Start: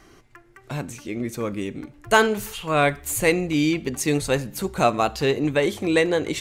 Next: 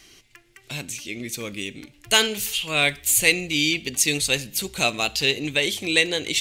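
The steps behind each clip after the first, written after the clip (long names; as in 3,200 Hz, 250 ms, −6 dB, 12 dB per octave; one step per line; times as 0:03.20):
high shelf with overshoot 1,900 Hz +13.5 dB, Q 1.5
level −6 dB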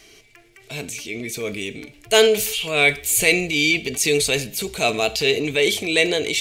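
hollow resonant body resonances 440/650/2,300 Hz, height 13 dB, ringing for 65 ms
transient designer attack −4 dB, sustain +4 dB
level +1 dB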